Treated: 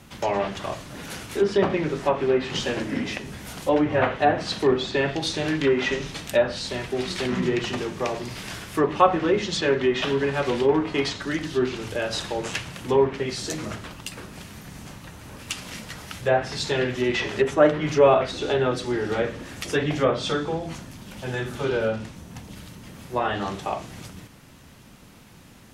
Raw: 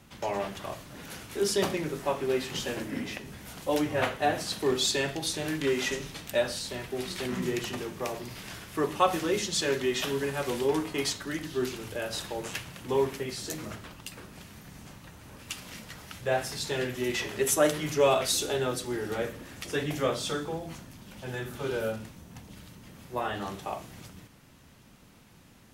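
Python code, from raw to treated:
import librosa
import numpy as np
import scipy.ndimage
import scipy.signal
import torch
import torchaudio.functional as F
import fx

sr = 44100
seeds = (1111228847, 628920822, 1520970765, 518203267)

y = fx.env_lowpass_down(x, sr, base_hz=1900.0, full_db=-23.0)
y = F.gain(torch.from_numpy(y), 7.0).numpy()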